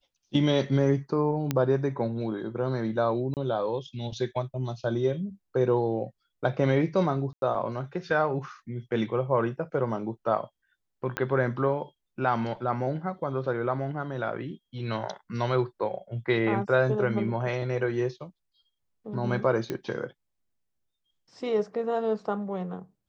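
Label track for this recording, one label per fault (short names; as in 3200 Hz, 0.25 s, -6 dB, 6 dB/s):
1.510000	1.510000	pop -12 dBFS
3.340000	3.370000	gap 28 ms
7.330000	7.420000	gap 92 ms
11.170000	11.170000	pop -13 dBFS
19.700000	19.700000	pop -17 dBFS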